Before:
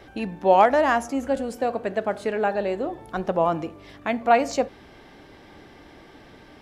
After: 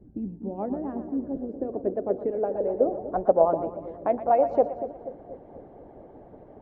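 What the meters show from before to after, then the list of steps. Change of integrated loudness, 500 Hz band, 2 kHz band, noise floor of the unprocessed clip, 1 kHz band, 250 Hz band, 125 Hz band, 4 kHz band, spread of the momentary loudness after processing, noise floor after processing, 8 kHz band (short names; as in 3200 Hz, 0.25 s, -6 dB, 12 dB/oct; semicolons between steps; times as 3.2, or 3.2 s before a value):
-3.5 dB, -1.0 dB, under -20 dB, -49 dBFS, -6.5 dB, -2.5 dB, -4.5 dB, under -30 dB, 17 LU, -50 dBFS, under -35 dB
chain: split-band echo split 540 Hz, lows 0.241 s, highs 0.118 s, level -10 dB; low-pass sweep 230 Hz -> 640 Hz, 0.49–3.28; harmonic-percussive split harmonic -12 dB; gain +2 dB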